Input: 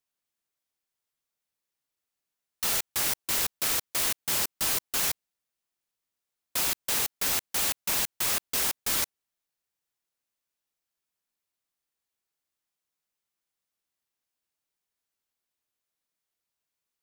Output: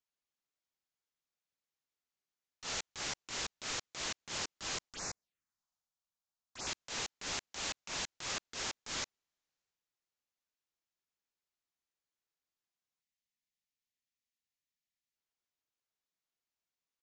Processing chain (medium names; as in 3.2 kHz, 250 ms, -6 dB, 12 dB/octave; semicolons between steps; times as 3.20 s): transient shaper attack -10 dB, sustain +5 dB; 4.89–6.67 s: touch-sensitive phaser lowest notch 370 Hz, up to 3.2 kHz, full sweep at -29 dBFS; 13.01–15.16 s: spectral selection erased 280–1700 Hz; resampled via 16 kHz; trim -6 dB